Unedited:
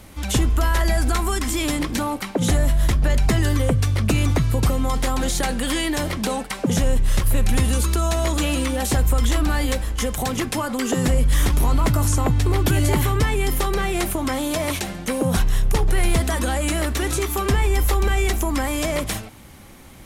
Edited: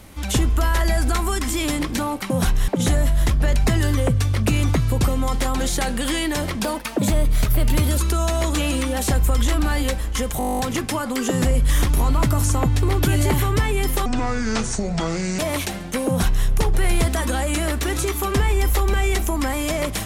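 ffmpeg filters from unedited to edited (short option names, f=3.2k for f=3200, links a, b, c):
-filter_complex "[0:a]asplit=17[a][b][c][d][e][f][g][h][i][j][k][l][m][n][o][p][q];[a]atrim=end=2.302[r];[b]atrim=start=15.218:end=15.602[s];[c]atrim=start=2.298:end=6.264[t];[d]atrim=start=6.26:end=7.81,asetpts=PTS-STARTPTS,asetrate=51156,aresample=44100[u];[e]atrim=start=7.806:end=10.242[v];[f]atrim=start=10.218:end=10.242[w];[g]atrim=start=10.218:end=10.242[x];[h]atrim=start=10.218:end=10.242[y];[i]atrim=start=10.218:end=10.242[z];[j]atrim=start=10.218:end=10.242[aa];[k]atrim=start=10.218:end=10.242[ab];[l]atrim=start=10.218:end=10.242[ac];[m]atrim=start=10.218:end=10.242[ad];[n]atrim=start=10.218:end=10.242[ae];[o]atrim=start=10.218:end=13.694[af];[p]atrim=start=13.69:end=14.53,asetpts=PTS-STARTPTS,asetrate=27783,aresample=44100[ag];[q]atrim=start=14.526[ah];[r][s]acrossfade=d=0.004:c1=hsin:c2=hsin[ai];[ai][t]acrossfade=d=0.004:c1=hsin:c2=hsin[aj];[aj][u]acrossfade=d=0.004:c1=hsin:c2=hsin[ak];[ak][v]acrossfade=d=0.004:c1=hsin:c2=hsin[al];[al][w]acrossfade=d=0.004:c1=hsin:c2=hsin[am];[am][x]acrossfade=d=0.004:c1=hsin:c2=hsin[an];[an][y]acrossfade=d=0.004:c1=hsin:c2=hsin[ao];[ao][z]acrossfade=d=0.004:c1=hsin:c2=hsin[ap];[ap][aa]acrossfade=d=0.004:c1=hsin:c2=hsin[aq];[aq][ab]acrossfade=d=0.004:c1=hsin:c2=hsin[ar];[ar][ac]acrossfade=d=0.004:c1=hsin:c2=hsin[as];[as][ad]acrossfade=d=0.004:c1=hsin:c2=hsin[at];[at][ae]acrossfade=d=0.004:c1=hsin:c2=hsin[au];[au][af]acrossfade=d=0.004:c1=hsin:c2=hsin[av];[av][ag]acrossfade=d=0.004:c1=hsin:c2=hsin[aw];[aw][ah]acrossfade=d=0.004:c1=hsin:c2=hsin"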